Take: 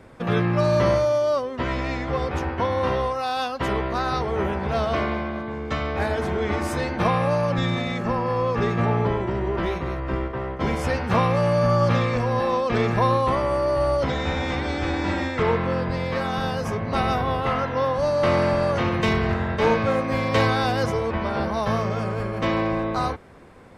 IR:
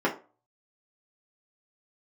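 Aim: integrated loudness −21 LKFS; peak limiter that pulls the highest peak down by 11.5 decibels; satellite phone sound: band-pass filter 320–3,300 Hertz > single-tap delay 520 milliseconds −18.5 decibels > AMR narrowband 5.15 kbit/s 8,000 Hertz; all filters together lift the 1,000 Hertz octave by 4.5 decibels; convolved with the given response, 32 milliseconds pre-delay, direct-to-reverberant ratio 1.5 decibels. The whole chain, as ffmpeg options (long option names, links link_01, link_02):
-filter_complex "[0:a]equalizer=frequency=1000:width_type=o:gain=5.5,alimiter=limit=-16dB:level=0:latency=1,asplit=2[link_01][link_02];[1:a]atrim=start_sample=2205,adelay=32[link_03];[link_02][link_03]afir=irnorm=-1:irlink=0,volume=-14.5dB[link_04];[link_01][link_04]amix=inputs=2:normalize=0,highpass=320,lowpass=3300,aecho=1:1:520:0.119,volume=4dB" -ar 8000 -c:a libopencore_amrnb -b:a 5150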